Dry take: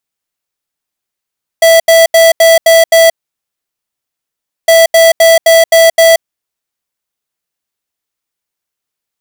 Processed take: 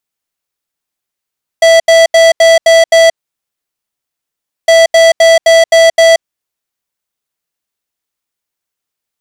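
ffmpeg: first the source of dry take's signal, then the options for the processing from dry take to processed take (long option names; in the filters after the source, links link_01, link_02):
-f lavfi -i "aevalsrc='0.596*(2*lt(mod(659*t,1),0.5)-1)*clip(min(mod(mod(t,3.06),0.26),0.18-mod(mod(t,3.06),0.26))/0.005,0,1)*lt(mod(t,3.06),1.56)':duration=6.12:sample_rate=44100"
-filter_complex "[0:a]acrossover=split=8500[link_01][link_02];[link_02]acompressor=threshold=-36dB:ratio=4:attack=1:release=60[link_03];[link_01][link_03]amix=inputs=2:normalize=0"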